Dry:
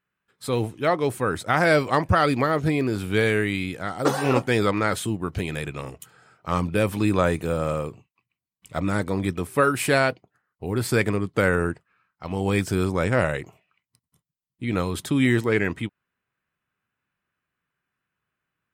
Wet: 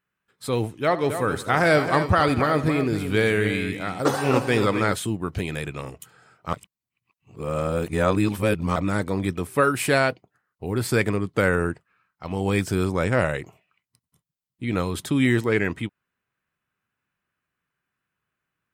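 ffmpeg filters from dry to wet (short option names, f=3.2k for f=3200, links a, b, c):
-filter_complex "[0:a]asettb=1/sr,asplit=3[a][b][c];[a]atrim=end=0.744[d];[b]atrim=start=0.74:end=4.92,asetpts=PTS-STARTPTS,afade=t=in:d=0.004:c=qsin,afade=t=out:st=4.176:d=0.004:c=qsin,aecho=1:1:76|170|269:0.178|0.119|0.335,atrim=end_sample=184338[e];[c]atrim=start=4.916[f];[d][e]acrossfade=d=0.004:c1=hsin:c2=qsin[g];[g][f]acrossfade=d=0.004:c1=qsin:c2=hsin,asplit=3[h][i][j];[h]atrim=end=6.532[k];[i]atrim=start=6.528:end=8.762,asetpts=PTS-STARTPTS,areverse[l];[j]atrim=start=8.758[m];[k][l]acrossfade=d=0.004:c1=hsin:c2=hsin[n];[n][m]acrossfade=d=0.004:c1=hsin:c2=hsin"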